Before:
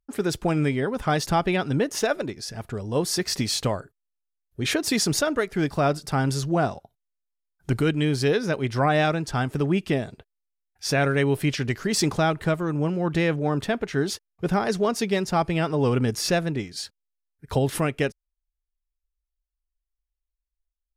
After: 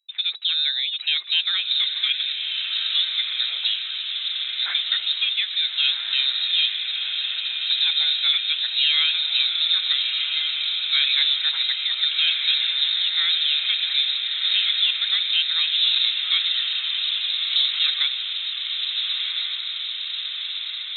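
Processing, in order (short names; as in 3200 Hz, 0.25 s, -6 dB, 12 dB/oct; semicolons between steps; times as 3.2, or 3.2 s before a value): diffused feedback echo 1.374 s, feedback 69%, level -3.5 dB; inverted band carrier 3900 Hz; Chebyshev high-pass 1900 Hz, order 2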